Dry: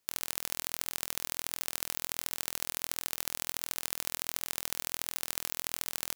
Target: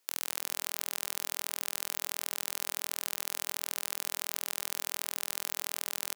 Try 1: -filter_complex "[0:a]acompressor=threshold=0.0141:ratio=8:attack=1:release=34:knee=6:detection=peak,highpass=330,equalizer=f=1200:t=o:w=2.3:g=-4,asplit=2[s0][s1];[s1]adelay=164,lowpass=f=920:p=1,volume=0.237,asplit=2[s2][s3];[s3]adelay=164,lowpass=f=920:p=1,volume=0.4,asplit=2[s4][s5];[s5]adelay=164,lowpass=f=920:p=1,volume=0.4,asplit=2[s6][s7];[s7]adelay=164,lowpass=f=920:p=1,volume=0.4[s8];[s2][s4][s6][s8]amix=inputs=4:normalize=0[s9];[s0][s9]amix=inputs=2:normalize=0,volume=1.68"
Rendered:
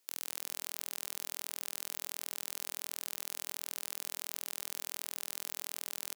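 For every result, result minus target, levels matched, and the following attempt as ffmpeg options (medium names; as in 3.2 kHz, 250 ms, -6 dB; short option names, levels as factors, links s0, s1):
compression: peak gain reduction +5 dB; 1 kHz band -3.5 dB
-filter_complex "[0:a]acompressor=threshold=0.0282:ratio=8:attack=1:release=34:knee=6:detection=peak,highpass=330,equalizer=f=1200:t=o:w=2.3:g=-4,asplit=2[s0][s1];[s1]adelay=164,lowpass=f=920:p=1,volume=0.237,asplit=2[s2][s3];[s3]adelay=164,lowpass=f=920:p=1,volume=0.4,asplit=2[s4][s5];[s5]adelay=164,lowpass=f=920:p=1,volume=0.4,asplit=2[s6][s7];[s7]adelay=164,lowpass=f=920:p=1,volume=0.4[s8];[s2][s4][s6][s8]amix=inputs=4:normalize=0[s9];[s0][s9]amix=inputs=2:normalize=0,volume=1.68"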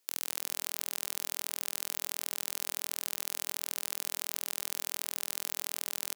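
1 kHz band -3.5 dB
-filter_complex "[0:a]acompressor=threshold=0.0282:ratio=8:attack=1:release=34:knee=6:detection=peak,highpass=330,asplit=2[s0][s1];[s1]adelay=164,lowpass=f=920:p=1,volume=0.237,asplit=2[s2][s3];[s3]adelay=164,lowpass=f=920:p=1,volume=0.4,asplit=2[s4][s5];[s5]adelay=164,lowpass=f=920:p=1,volume=0.4,asplit=2[s6][s7];[s7]adelay=164,lowpass=f=920:p=1,volume=0.4[s8];[s2][s4][s6][s8]amix=inputs=4:normalize=0[s9];[s0][s9]amix=inputs=2:normalize=0,volume=1.68"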